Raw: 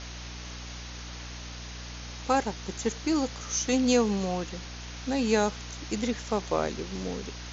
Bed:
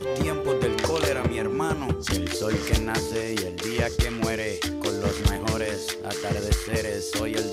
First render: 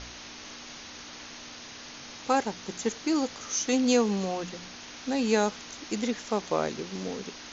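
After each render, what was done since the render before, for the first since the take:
hum removal 60 Hz, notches 3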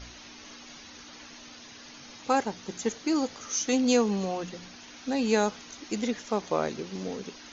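broadband denoise 8 dB, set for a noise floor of −45 dBFS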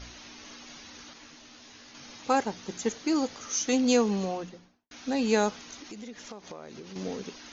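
0:01.13–0:01.95: micro pitch shift up and down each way 55 cents
0:04.19–0:04.91: fade out and dull
0:05.78–0:06.96: downward compressor 5 to 1, threshold −40 dBFS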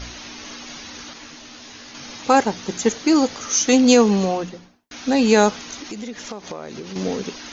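level +10.5 dB
brickwall limiter −2 dBFS, peak gain reduction 2.5 dB

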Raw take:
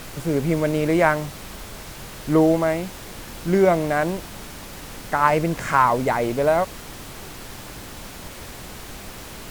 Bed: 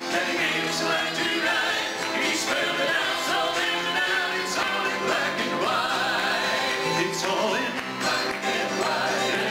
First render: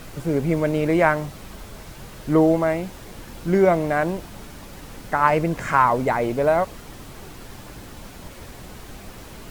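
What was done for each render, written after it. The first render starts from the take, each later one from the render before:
broadband denoise 6 dB, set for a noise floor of −38 dBFS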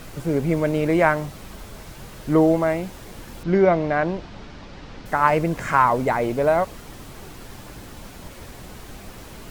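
0:03.43–0:05.06: low-pass filter 5,200 Hz 24 dB per octave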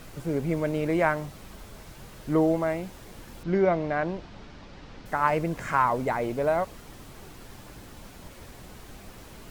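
level −6 dB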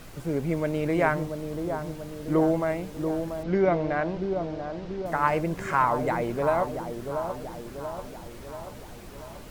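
delay with a low-pass on its return 686 ms, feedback 57%, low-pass 950 Hz, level −6 dB

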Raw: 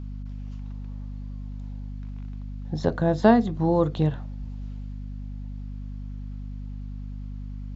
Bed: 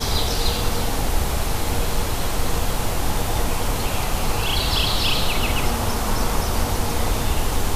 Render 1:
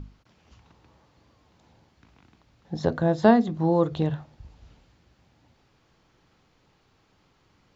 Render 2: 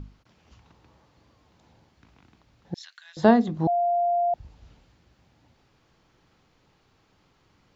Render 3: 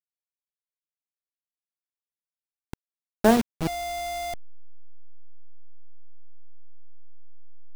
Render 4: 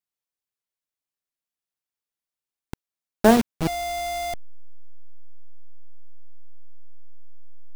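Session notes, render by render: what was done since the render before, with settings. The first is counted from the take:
mains-hum notches 50/100/150/200/250 Hz
0:02.74–0:03.17: inverse Chebyshev high-pass filter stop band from 470 Hz, stop band 70 dB; 0:03.67–0:04.34: beep over 697 Hz −20 dBFS
hold until the input has moved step −20.5 dBFS; dead-zone distortion −33 dBFS
level +3 dB

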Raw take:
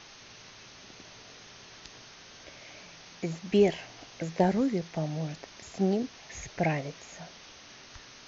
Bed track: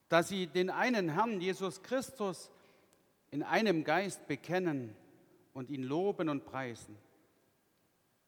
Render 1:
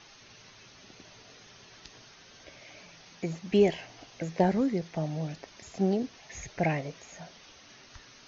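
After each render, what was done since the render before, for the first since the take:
broadband denoise 6 dB, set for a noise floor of −51 dBFS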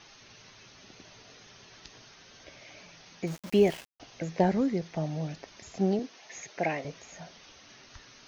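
0:03.27–0:04.00: centre clipping without the shift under −39.5 dBFS
0:05.99–0:06.85: high-pass filter 280 Hz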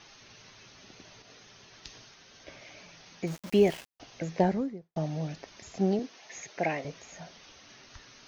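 0:01.22–0:02.69: multiband upward and downward expander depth 70%
0:04.36–0:04.96: fade out and dull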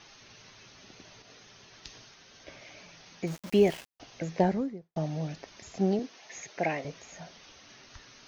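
no processing that can be heard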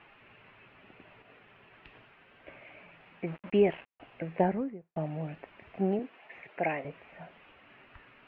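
elliptic low-pass filter 2,700 Hz, stop band 70 dB
low-shelf EQ 200 Hz −4 dB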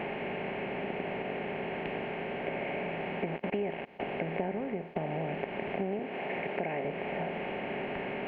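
compressor on every frequency bin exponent 0.4
downward compressor 6 to 1, threshold −30 dBFS, peak gain reduction 12.5 dB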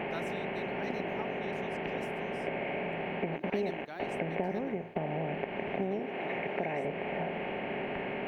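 mix in bed track −13.5 dB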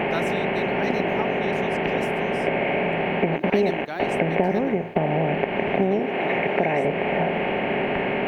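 level +12 dB

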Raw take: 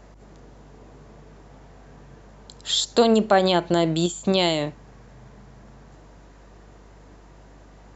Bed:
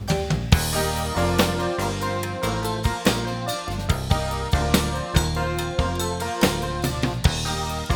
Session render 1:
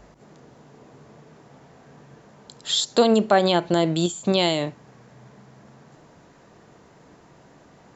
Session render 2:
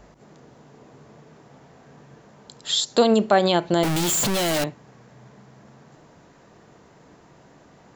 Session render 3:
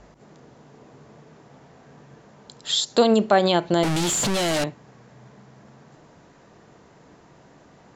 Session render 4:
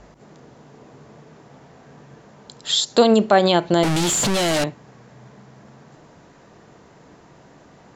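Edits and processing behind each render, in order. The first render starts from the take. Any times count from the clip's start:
hum removal 50 Hz, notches 2
0:03.83–0:04.64: sign of each sample alone
low-pass filter 9,400 Hz 12 dB per octave
level +3 dB; brickwall limiter −2 dBFS, peak gain reduction 1 dB

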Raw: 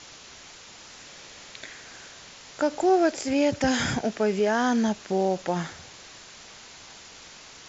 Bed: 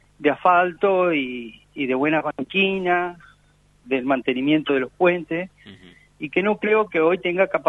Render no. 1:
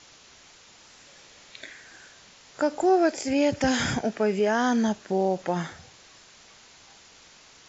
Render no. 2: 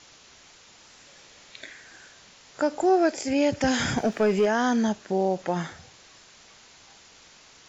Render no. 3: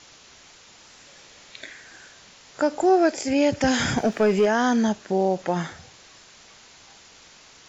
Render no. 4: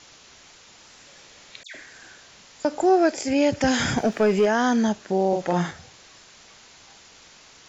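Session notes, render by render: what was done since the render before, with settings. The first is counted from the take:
noise reduction from a noise print 6 dB
0:03.97–0:04.46: leveller curve on the samples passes 1
level +2.5 dB
0:01.63–0:02.65: all-pass dispersion lows, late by 116 ms, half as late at 2,200 Hz; 0:05.28–0:05.71: double-tracking delay 46 ms −3 dB

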